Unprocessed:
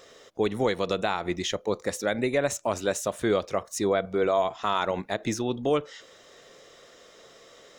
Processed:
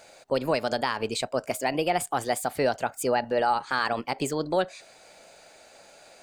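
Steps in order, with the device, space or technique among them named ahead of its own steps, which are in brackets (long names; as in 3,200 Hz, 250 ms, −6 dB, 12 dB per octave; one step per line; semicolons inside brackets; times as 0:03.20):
nightcore (speed change +25%)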